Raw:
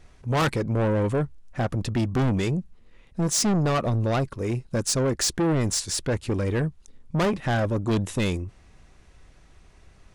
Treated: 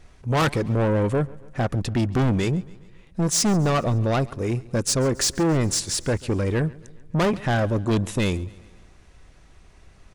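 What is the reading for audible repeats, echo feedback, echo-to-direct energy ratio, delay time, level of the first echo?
3, 55%, -20.5 dB, 0.139 s, -22.0 dB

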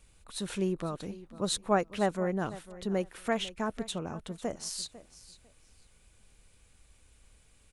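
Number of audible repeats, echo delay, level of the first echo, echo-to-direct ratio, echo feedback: 2, 0.499 s, -17.0 dB, -17.0 dB, 20%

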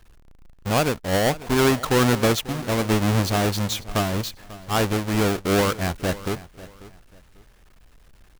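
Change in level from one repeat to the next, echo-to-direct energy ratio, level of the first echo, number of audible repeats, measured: -11.5 dB, -17.5 dB, -18.0 dB, 2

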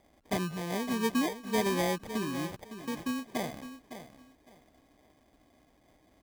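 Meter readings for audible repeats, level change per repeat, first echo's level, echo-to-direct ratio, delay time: 2, -13.5 dB, -11.5 dB, -11.5 dB, 0.559 s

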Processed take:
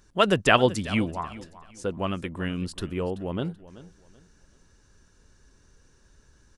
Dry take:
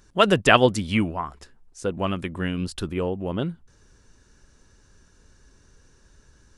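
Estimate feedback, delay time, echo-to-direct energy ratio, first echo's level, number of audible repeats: 28%, 0.382 s, -17.0 dB, -17.5 dB, 2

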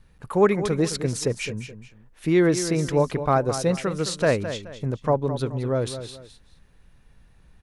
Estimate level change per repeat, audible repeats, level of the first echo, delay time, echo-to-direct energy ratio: -10.0 dB, 2, -11.0 dB, 0.213 s, -10.5 dB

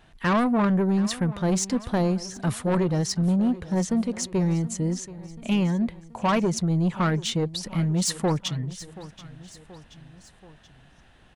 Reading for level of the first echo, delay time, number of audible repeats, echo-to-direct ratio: -17.5 dB, 0.729 s, 3, -16.0 dB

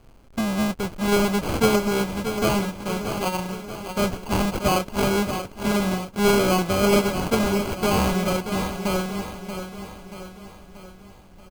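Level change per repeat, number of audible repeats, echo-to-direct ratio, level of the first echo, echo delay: -6.0 dB, 5, -7.5 dB, -9.0 dB, 0.632 s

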